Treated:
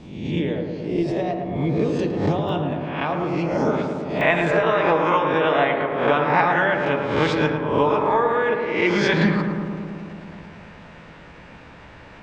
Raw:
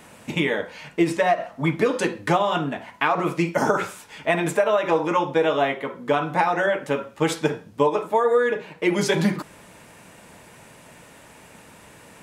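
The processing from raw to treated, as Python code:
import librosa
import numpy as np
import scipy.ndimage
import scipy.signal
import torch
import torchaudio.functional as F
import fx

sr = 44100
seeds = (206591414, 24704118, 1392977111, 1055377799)

y = fx.spec_swells(x, sr, rise_s=0.73)
y = scipy.signal.sosfilt(scipy.signal.butter(4, 5000.0, 'lowpass', fs=sr, output='sos'), y)
y = fx.peak_eq(y, sr, hz=1600.0, db=fx.steps((0.0, -14.5), (2.49, -8.0), (4.21, 5.0)), octaves=1.9)
y = fx.hpss(y, sr, part='harmonic', gain_db=-5)
y = fx.low_shelf(y, sr, hz=150.0, db=11.5)
y = fx.echo_filtered(y, sr, ms=110, feedback_pct=79, hz=1800.0, wet_db=-5.5)
y = fx.pre_swell(y, sr, db_per_s=65.0)
y = y * 10.0 ** (-1.0 / 20.0)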